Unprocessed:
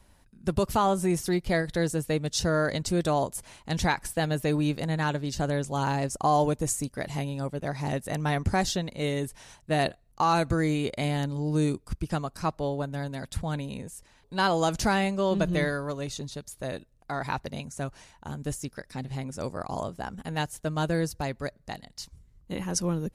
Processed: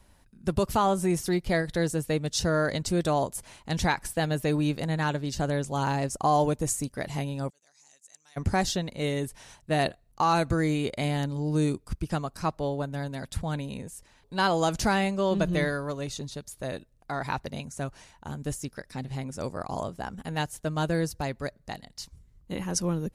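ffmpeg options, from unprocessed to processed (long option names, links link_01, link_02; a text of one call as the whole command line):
ffmpeg -i in.wav -filter_complex "[0:a]asplit=3[link_01][link_02][link_03];[link_01]afade=type=out:start_time=7.49:duration=0.02[link_04];[link_02]bandpass=frequency=6900:width_type=q:width=6,afade=type=in:start_time=7.49:duration=0.02,afade=type=out:start_time=8.36:duration=0.02[link_05];[link_03]afade=type=in:start_time=8.36:duration=0.02[link_06];[link_04][link_05][link_06]amix=inputs=3:normalize=0" out.wav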